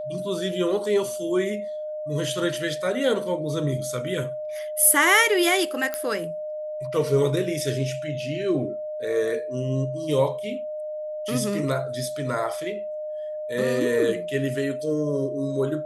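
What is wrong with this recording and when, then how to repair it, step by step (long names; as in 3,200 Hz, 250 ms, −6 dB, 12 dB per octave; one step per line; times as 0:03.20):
whistle 610 Hz −29 dBFS
0:05.94: click −12 dBFS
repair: click removal
notch filter 610 Hz, Q 30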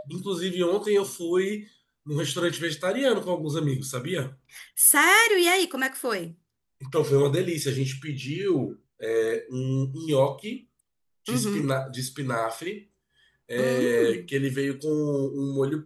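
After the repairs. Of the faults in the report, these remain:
none of them is left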